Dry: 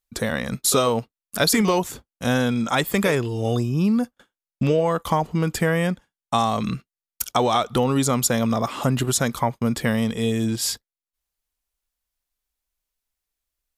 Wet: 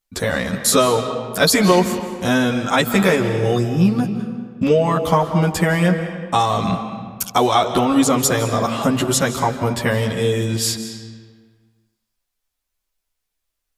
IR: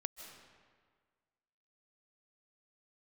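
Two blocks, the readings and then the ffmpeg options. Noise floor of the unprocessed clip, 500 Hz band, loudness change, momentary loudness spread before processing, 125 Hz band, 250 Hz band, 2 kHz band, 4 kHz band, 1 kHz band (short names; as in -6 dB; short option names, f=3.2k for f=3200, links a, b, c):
under -85 dBFS, +5.0 dB, +4.0 dB, 7 LU, +4.0 dB, +4.0 dB, +5.5 dB, +4.5 dB, +5.0 dB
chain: -filter_complex "[0:a]asplit=2[a][b];[1:a]atrim=start_sample=2205,highshelf=f=11k:g=-10,adelay=11[c];[b][c]afir=irnorm=-1:irlink=0,volume=4dB[d];[a][d]amix=inputs=2:normalize=0,volume=1dB"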